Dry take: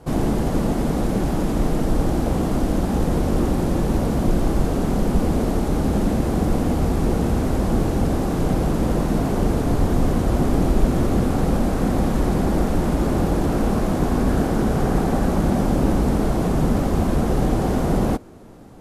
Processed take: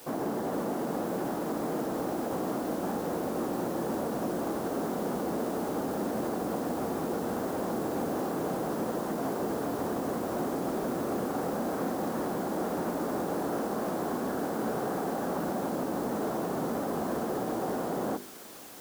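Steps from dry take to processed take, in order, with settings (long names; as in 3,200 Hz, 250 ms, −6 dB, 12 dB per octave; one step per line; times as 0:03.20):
high-pass filter 290 Hz 12 dB per octave
flat-topped bell 4,900 Hz −11.5 dB 2.6 octaves
mains-hum notches 50/100/150/200/250/300/350/400 Hz
brickwall limiter −20 dBFS, peak gain reduction 8 dB
bit-depth reduction 8 bits, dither triangular
on a send: delay with a high-pass on its return 531 ms, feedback 81%, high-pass 2,700 Hz, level −6 dB
on the sum: level −3.5 dB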